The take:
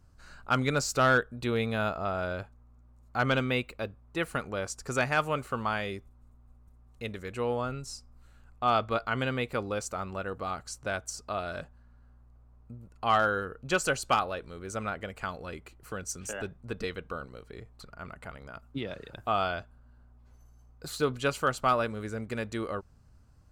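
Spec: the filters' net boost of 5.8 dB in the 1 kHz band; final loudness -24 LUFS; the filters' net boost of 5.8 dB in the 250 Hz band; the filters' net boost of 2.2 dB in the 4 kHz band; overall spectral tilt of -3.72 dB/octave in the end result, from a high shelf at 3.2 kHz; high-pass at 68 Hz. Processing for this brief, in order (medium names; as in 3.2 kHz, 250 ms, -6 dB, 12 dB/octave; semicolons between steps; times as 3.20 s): high-pass 68 Hz; peaking EQ 250 Hz +6.5 dB; peaking EQ 1 kHz +8.5 dB; treble shelf 3.2 kHz -8 dB; peaking EQ 4 kHz +8 dB; trim +3 dB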